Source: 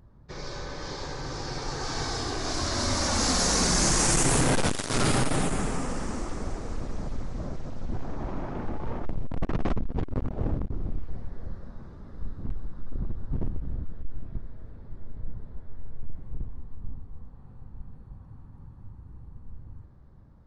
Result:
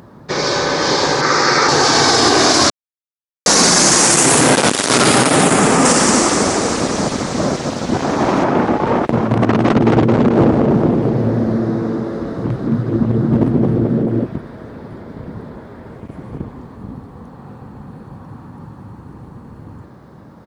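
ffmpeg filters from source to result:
ffmpeg -i in.wav -filter_complex "[0:a]asplit=3[link_01][link_02][link_03];[link_01]afade=type=out:start_time=1.21:duration=0.02[link_04];[link_02]highpass=160,equalizer=frequency=280:width_type=q:width=4:gain=-5,equalizer=frequency=750:width_type=q:width=4:gain=-4,equalizer=frequency=1300:width_type=q:width=4:gain=9,equalizer=frequency=2000:width_type=q:width=4:gain=8,equalizer=frequency=3100:width_type=q:width=4:gain=-6,lowpass=frequency=7800:width=0.5412,lowpass=frequency=7800:width=1.3066,afade=type=in:start_time=1.21:duration=0.02,afade=type=out:start_time=1.67:duration=0.02[link_05];[link_03]afade=type=in:start_time=1.67:duration=0.02[link_06];[link_04][link_05][link_06]amix=inputs=3:normalize=0,asettb=1/sr,asplit=3[link_07][link_08][link_09];[link_07]atrim=end=5.854[link_10];[link_08]atrim=start=5.85:end=8.44,asetpts=PTS-STARTPTS,afade=type=in:duration=0.004:curve=qsin,afade=type=out:start_time=2.586:duration=0.004:curve=qsin,highshelf=frequency=3100:gain=9.5[link_11];[link_09]atrim=start=8.436[link_12];[link_10][link_11]acrossfade=duration=0.004:curve1=hsin:curve2=qsin[link_13];[link_13][link_12]acrossfade=duration=0.004:curve1=qsin:curve2=hsin,asplit=3[link_14][link_15][link_16];[link_14]afade=type=out:start_time=9.12:duration=0.02[link_17];[link_15]asplit=7[link_18][link_19][link_20][link_21][link_22][link_23][link_24];[link_19]adelay=218,afreqshift=110,volume=-7dB[link_25];[link_20]adelay=436,afreqshift=220,volume=-13.4dB[link_26];[link_21]adelay=654,afreqshift=330,volume=-19.8dB[link_27];[link_22]adelay=872,afreqshift=440,volume=-26.1dB[link_28];[link_23]adelay=1090,afreqshift=550,volume=-32.5dB[link_29];[link_24]adelay=1308,afreqshift=660,volume=-38.9dB[link_30];[link_18][link_25][link_26][link_27][link_28][link_29][link_30]amix=inputs=7:normalize=0,afade=type=in:start_time=9.12:duration=0.02,afade=type=out:start_time=14.24:duration=0.02[link_31];[link_16]afade=type=in:start_time=14.24:duration=0.02[link_32];[link_17][link_31][link_32]amix=inputs=3:normalize=0,asplit=3[link_33][link_34][link_35];[link_33]atrim=end=2.7,asetpts=PTS-STARTPTS,afade=type=out:start_time=2.696:duration=0.004:curve=hsin[link_36];[link_34]atrim=start=2.7:end=3.46,asetpts=PTS-STARTPTS,volume=0[link_37];[link_35]atrim=start=3.46,asetpts=PTS-STARTPTS,afade=type=in:duration=0.004:curve=hsin[link_38];[link_36][link_37][link_38]concat=n=3:v=0:a=1,highpass=210,alimiter=level_in=23.5dB:limit=-1dB:release=50:level=0:latency=1,volume=-1dB" out.wav

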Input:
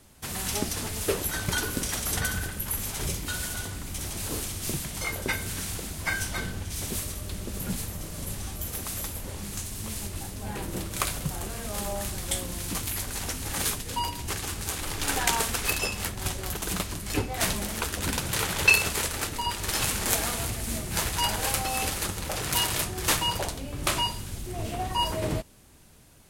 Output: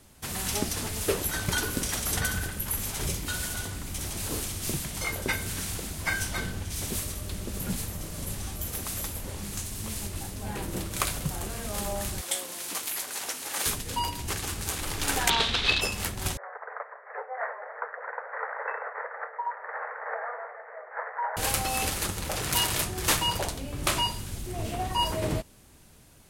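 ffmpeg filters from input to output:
ffmpeg -i in.wav -filter_complex "[0:a]asettb=1/sr,asplit=3[link_01][link_02][link_03];[link_01]atrim=end=12.214[link_04];[link_02]atrim=start=12.21:end=13.66,asetpts=PTS-STARTPTS,afade=type=in:duration=0.004:curve=qsin,afade=type=out:start_time=1.446:duration=0.004:curve=qsin,highpass=450[link_05];[link_03]atrim=start=13.656[link_06];[link_04][link_05]acrossfade=duration=0.004:curve1=hsin:curve2=qsin[link_07];[link_07][link_06]acrossfade=duration=0.004:curve1=qsin:curve2=hsin,asplit=3[link_08][link_09][link_10];[link_08]afade=type=out:start_time=15.29:duration=0.02[link_11];[link_09]lowpass=frequency=3700:width_type=q:width=4.7,afade=type=in:start_time=15.29:duration=0.02,afade=type=out:start_time=15.8:duration=0.02[link_12];[link_10]afade=type=in:start_time=15.8:duration=0.02[link_13];[link_11][link_12][link_13]amix=inputs=3:normalize=0,asettb=1/sr,asplit=3[link_14][link_15][link_16];[link_14]atrim=end=16.374[link_17];[link_15]atrim=start=16.37:end=21.37,asetpts=PTS-STARTPTS,afade=type=in:duration=0.004:curve=qsin,afade=type=out:start_time=4.996:duration=0.004:curve=qsin,asuperpass=centerf=950:order=20:qfactor=0.63[link_18];[link_16]atrim=start=21.366[link_19];[link_17][link_18]acrossfade=duration=0.004:curve1=hsin:curve2=qsin[link_20];[link_20][link_19]acrossfade=duration=0.004:curve1=qsin:curve2=hsin" out.wav

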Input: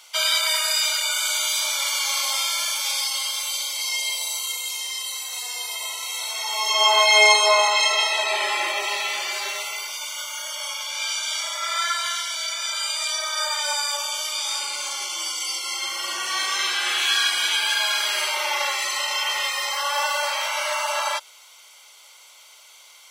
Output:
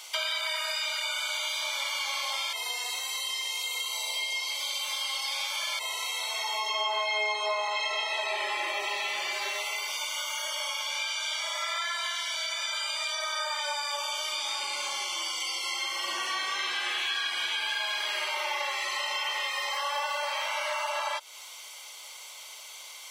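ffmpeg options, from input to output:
ffmpeg -i in.wav -filter_complex "[0:a]asettb=1/sr,asplit=3[link_01][link_02][link_03];[link_01]atrim=end=14.994[link_04];[link_02]atrim=start=14.99:end=16.06,asetpts=PTS-STARTPTS,afade=type=in:duration=0.004:curve=qsin,afade=type=out:start_time=1.066:duration=0.004:curve=qsin,highpass=frequency=300:poles=1[link_05];[link_03]atrim=start=16.056[link_06];[link_04][link_05]acrossfade=duration=0.004:curve1=hsin:curve2=qsin[link_07];[link_07][link_06]acrossfade=duration=0.004:curve1=qsin:curve2=hsin,asplit=3[link_08][link_09][link_10];[link_08]atrim=end=2.532[link_11];[link_09]atrim=start=2.528:end=5.792,asetpts=PTS-STARTPTS,areverse[link_12];[link_10]atrim=start=5.788[link_13];[link_11][link_12]acrossfade=duration=0.004:curve1=hsin:curve2=hsin[link_14];[link_14][link_13]acrossfade=duration=0.004:curve1=hsin:curve2=hsin,acrossover=split=4000[link_15][link_16];[link_16]acompressor=threshold=-38dB:ratio=4:attack=1:release=60[link_17];[link_15][link_17]amix=inputs=2:normalize=0,bandreject=frequency=1400:width=9.9,acompressor=threshold=-34dB:ratio=4,volume=4dB" out.wav

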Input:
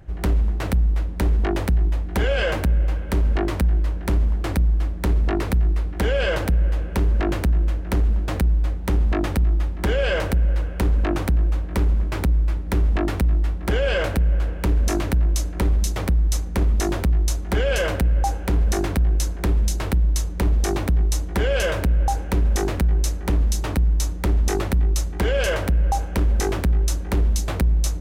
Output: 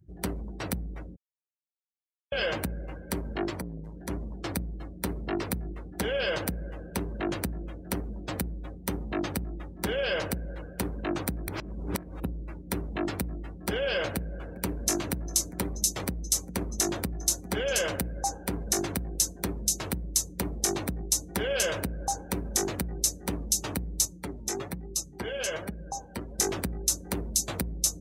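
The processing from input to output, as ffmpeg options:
ffmpeg -i in.wav -filter_complex "[0:a]asettb=1/sr,asplit=3[link_01][link_02][link_03];[link_01]atrim=end=3.504[link_04];[link_02]atrim=start=3.5:end=4.1,asetpts=PTS-STARTPTS,afade=type=in:duration=0.004:curve=qsin,afade=type=out:start_time=0.596:duration=0.004:curve=qsin,volume=22.5dB,asoftclip=hard,volume=-22.5dB[link_05];[link_03]atrim=start=4.096[link_06];[link_04][link_05]acrossfade=duration=0.004:curve1=hsin:curve2=qsin[link_07];[link_07][link_06]acrossfade=duration=0.004:curve1=qsin:curve2=hsin,asettb=1/sr,asplit=3[link_08][link_09][link_10];[link_08]atrim=end=14.114[link_11];[link_09]atrim=start=14.11:end=17.82,asetpts=PTS-STARTPTS,afade=type=in:duration=0.004:curve=qsin,afade=type=out:start_time=3.706:duration=0.004:curve=qsin,aecho=1:1:403:0.178,atrim=end_sample=163611[link_12];[link_10]atrim=start=17.816[link_13];[link_11][link_12]acrossfade=duration=0.004:curve1=hsin:curve2=qsin[link_14];[link_14][link_13]acrossfade=duration=0.004:curve1=qsin:curve2=hsin,asettb=1/sr,asplit=3[link_15][link_16][link_17];[link_15]atrim=end=24.054[link_18];[link_16]atrim=start=24.05:end=26.39,asetpts=PTS-STARTPTS,afade=type=in:duration=0.004:curve=qsin,afade=type=out:start_time=2.336:duration=0.004:curve=qsin,flanger=delay=4.6:depth=4.5:regen=50:speed=1.2:shape=triangular[link_19];[link_17]atrim=start=26.386[link_20];[link_18][link_19]acrossfade=duration=0.004:curve1=hsin:curve2=qsin[link_21];[link_21][link_20]acrossfade=duration=0.004:curve1=qsin:curve2=hsin,asplit=5[link_22][link_23][link_24][link_25][link_26];[link_22]atrim=end=1.16,asetpts=PTS-STARTPTS,afade=type=out:start_time=1.156:duration=0.004:curve=hsin[link_27];[link_23]atrim=start=1.16:end=2.32,asetpts=PTS-STARTPTS,volume=0[link_28];[link_24]atrim=start=2.32:end=11.482,asetpts=PTS-STARTPTS,afade=type=in:duration=0.004:curve=hsin[link_29];[link_25]atrim=start=11.478:end=12.242,asetpts=PTS-STARTPTS,areverse[link_30];[link_26]atrim=start=12.238[link_31];[link_27][link_28][link_29]concat=n=3:v=0:a=1[link_32];[link_32][link_30]acrossfade=duration=0.004:curve1=hsin:curve2=hsin[link_33];[link_33][link_31]acrossfade=duration=0.004:curve1=hsin:curve2=hsin,afftdn=noise_reduction=29:noise_floor=-40,highpass=120,bass=frequency=250:gain=1,treble=frequency=4000:gain=15,volume=-6.5dB" out.wav

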